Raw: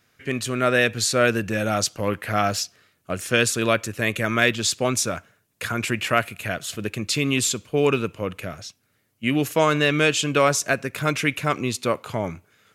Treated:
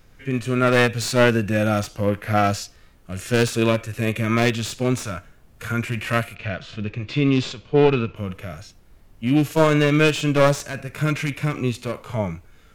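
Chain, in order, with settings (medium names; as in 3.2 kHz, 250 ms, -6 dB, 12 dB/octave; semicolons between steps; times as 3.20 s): one-sided wavefolder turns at -18.5 dBFS; harmonic-percussive split percussive -18 dB; added noise brown -56 dBFS; 6.35–8.16 s: low-pass 4.9 kHz 24 dB/octave; trim +6 dB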